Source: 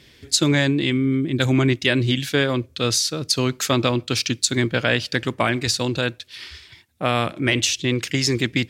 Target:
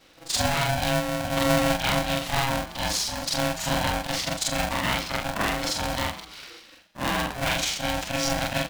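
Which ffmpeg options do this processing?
ffmpeg -i in.wav -filter_complex "[0:a]afftfilt=real='re':imag='-im':win_size=4096:overlap=0.75,highshelf=frequency=5800:gain=-3,asplit=5[link_01][link_02][link_03][link_04][link_05];[link_02]adelay=125,afreqshift=110,volume=-15.5dB[link_06];[link_03]adelay=250,afreqshift=220,volume=-22.8dB[link_07];[link_04]adelay=375,afreqshift=330,volume=-30.2dB[link_08];[link_05]adelay=500,afreqshift=440,volume=-37.5dB[link_09];[link_01][link_06][link_07][link_08][link_09]amix=inputs=5:normalize=0,acontrast=58,aeval=exprs='val(0)*sgn(sin(2*PI*410*n/s))':channel_layout=same,volume=-6.5dB" out.wav

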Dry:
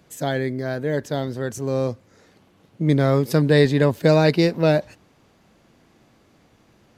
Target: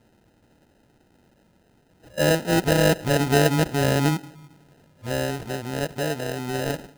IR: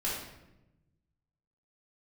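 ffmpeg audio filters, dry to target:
-filter_complex "[0:a]areverse,asplit=2[link_01][link_02];[1:a]atrim=start_sample=2205[link_03];[link_02][link_03]afir=irnorm=-1:irlink=0,volume=-23.5dB[link_04];[link_01][link_04]amix=inputs=2:normalize=0,acrusher=samples=39:mix=1:aa=0.000001,volume=-3.5dB"

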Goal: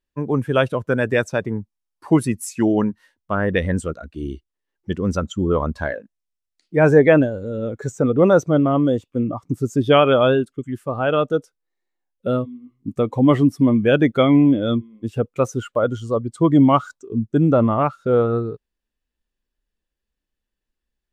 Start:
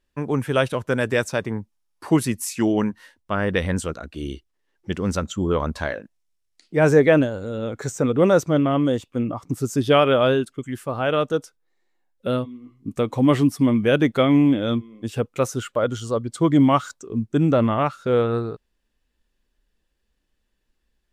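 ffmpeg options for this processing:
ffmpeg -i in.wav -af "afftdn=noise_reduction=12:noise_floor=-28,volume=2.5dB" out.wav

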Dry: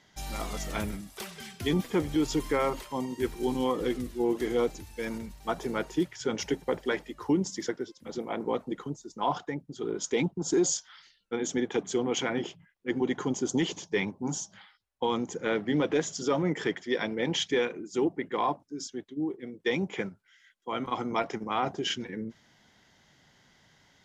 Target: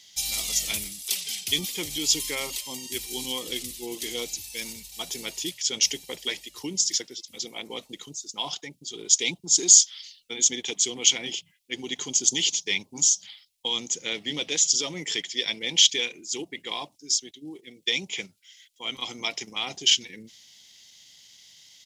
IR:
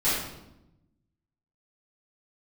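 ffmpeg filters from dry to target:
-af "aexciter=amount=15.5:drive=3.7:freq=2300,atempo=1.1,volume=-9dB"

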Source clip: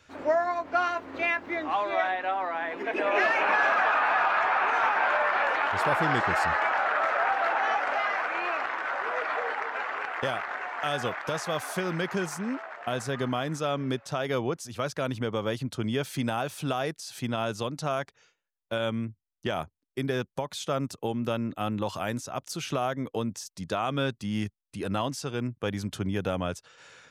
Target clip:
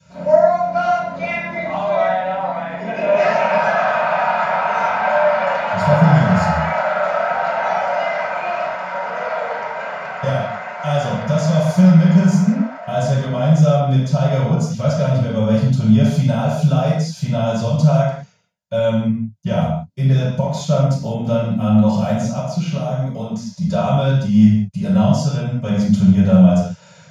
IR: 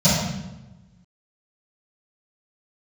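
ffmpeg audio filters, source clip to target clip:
-filter_complex "[0:a]asettb=1/sr,asplit=3[link_01][link_02][link_03];[link_01]atrim=end=22.444[link_04];[link_02]atrim=start=22.44:end=23.62,asetpts=PTS-STARTPTS,afade=type=in:duration=0.004:curve=qsin,afade=type=out:start_time=1.176:duration=0.004:curve=qsin,acrossover=split=260|4300[link_05][link_06][link_07];[link_05]acompressor=threshold=-41dB:ratio=4[link_08];[link_06]acompressor=threshold=-33dB:ratio=4[link_09];[link_07]acompressor=threshold=-50dB:ratio=4[link_10];[link_08][link_09][link_10]amix=inputs=3:normalize=0[link_11];[link_03]atrim=start=23.616[link_12];[link_04][link_11]acrossfade=duration=0.004:curve1=hsin:curve2=qsin[link_13];[link_13][link_12]acrossfade=duration=0.004:curve1=qsin:curve2=hsin[link_14];[1:a]atrim=start_sample=2205,afade=type=out:start_time=0.26:duration=0.01,atrim=end_sample=11907[link_15];[link_14][link_15]afir=irnorm=-1:irlink=0,volume=-13.5dB"

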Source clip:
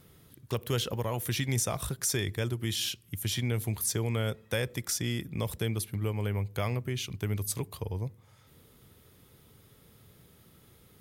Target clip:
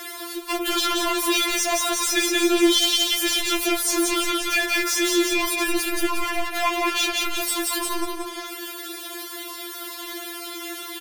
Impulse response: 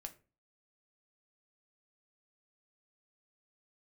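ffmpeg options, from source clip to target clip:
-filter_complex "[0:a]asplit=2[link_01][link_02];[link_02]aecho=0:1:178|356|534|712:0.376|0.132|0.046|0.0161[link_03];[link_01][link_03]amix=inputs=2:normalize=0,asplit=2[link_04][link_05];[link_05]highpass=frequency=720:poles=1,volume=38dB,asoftclip=type=tanh:threshold=-14.5dB[link_06];[link_04][link_06]amix=inputs=2:normalize=0,lowpass=frequency=5400:poles=1,volume=-6dB,afftfilt=real='re*4*eq(mod(b,16),0)':imag='im*4*eq(mod(b,16),0)':win_size=2048:overlap=0.75,volume=3dB"

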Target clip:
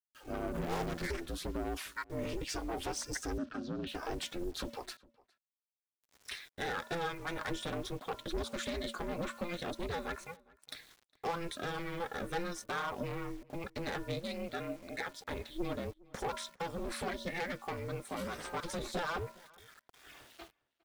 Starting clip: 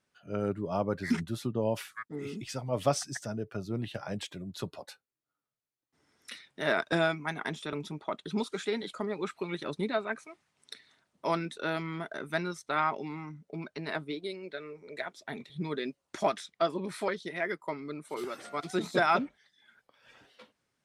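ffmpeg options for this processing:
ffmpeg -i in.wav -filter_complex "[0:a]asettb=1/sr,asplit=3[link_01][link_02][link_03];[link_01]atrim=end=15.734[link_04];[link_02]atrim=start=15.73:end=16.29,asetpts=PTS-STARTPTS,afade=type=in:duration=0.004:curve=qsin,afade=type=out:start_time=0.556:duration=0.004:curve=qsin,equalizer=frequency=2900:width=0.59:gain=-10.5[link_05];[link_03]atrim=start=16.286[link_06];[link_04][link_05]acrossfade=duration=0.004:curve1=hsin:curve2=qsin[link_07];[link_07][link_06]acrossfade=duration=0.004:curve1=qsin:curve2=hsin,bandreject=frequency=400.9:width_type=h:width=4,bandreject=frequency=801.8:width_type=h:width=4,bandreject=frequency=1202.7:width_type=h:width=4,bandreject=frequency=1603.6:width_type=h:width=4,acompressor=threshold=-31dB:ratio=5,aphaser=in_gain=1:out_gain=1:delay=2:decay=0.21:speed=1.3:type=sinusoidal,asoftclip=type=tanh:threshold=-35dB,flanger=delay=0.5:depth=6:regen=61:speed=0.6:shape=sinusoidal,acrusher=bits=10:mix=0:aa=0.000001,asplit=3[link_08][link_09][link_10];[link_08]afade=type=out:start_time=0.53:duration=0.02[link_11];[link_09]aeval=exprs='0.015*(cos(1*acos(clip(val(0)/0.015,-1,1)))-cos(1*PI/2))+0.00299*(cos(8*acos(clip(val(0)/0.015,-1,1)))-cos(8*PI/2))':channel_layout=same,afade=type=in:start_time=0.53:duration=0.02,afade=type=out:start_time=1.06:duration=0.02[link_12];[link_10]afade=type=in:start_time=1.06:duration=0.02[link_13];[link_11][link_12][link_13]amix=inputs=3:normalize=0,aeval=exprs='val(0)*sin(2*PI*170*n/s)':channel_layout=same,asettb=1/sr,asplit=3[link_14][link_15][link_16];[link_14]atrim=end=3.384[link_17];[link_15]atrim=start=3.38:end=3.87,asetpts=PTS-STARTPTS,afade=type=in:duration=0.004:curve=qsin,afade=type=out:start_time=0.486:duration=0.004:curve=qsin,highpass=frequency=110:width=0.5412,highpass=frequency=110:width=1.3066,equalizer=frequency=240:width_type=q:width=4:gain=9,equalizer=frequency=450:width_type=q:width=4:gain=-10,equalizer=frequency=870:width_type=q:width=4:gain=-8,equalizer=frequency=1400:width_type=q:width=4:gain=6,equalizer=frequency=2100:width_type=q:width=4:gain=-9,lowpass=frequency=5100:width=0.5412,lowpass=frequency=5100:width=1.3066[link_18];[link_16]atrim=start=3.866[link_19];[link_17][link_18]acrossfade=duration=0.004:curve1=hsin:curve2=qsin[link_20];[link_20][link_19]acrossfade=duration=0.004:curve1=qsin:curve2=hsin,asplit=2[link_21][link_22];[link_22]adelay=408.2,volume=-24dB,highshelf=frequency=4000:gain=-9.18[link_23];[link_21][link_23]amix=inputs=2:normalize=0,volume=10dB" out.wav

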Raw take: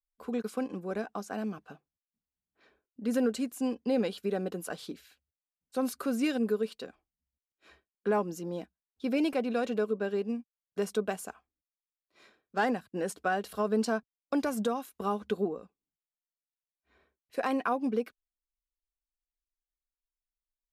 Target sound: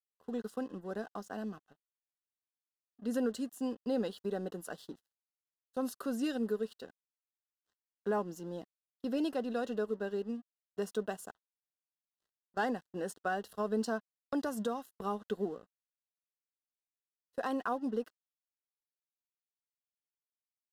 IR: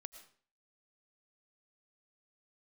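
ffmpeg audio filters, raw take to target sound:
-af "aeval=exprs='sgn(val(0))*max(abs(val(0))-0.002,0)':channel_layout=same,asuperstop=centerf=2300:order=4:qfactor=3.5,agate=range=-11dB:threshold=-46dB:ratio=16:detection=peak,volume=-4.5dB"

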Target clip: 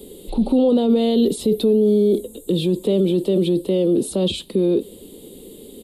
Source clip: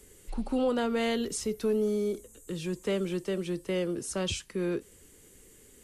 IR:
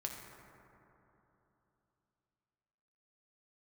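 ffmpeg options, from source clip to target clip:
-af "alimiter=level_in=6.5dB:limit=-24dB:level=0:latency=1:release=11,volume=-6.5dB,firequalizer=gain_entry='entry(110,0);entry(200,14);entry(520,12);entry(1600,-14);entry(3700,14);entry(6000,-14);entry(8700,-16)':delay=0.05:min_phase=1,aexciter=amount=6.1:drive=8.5:freq=7900,volume=8dB"

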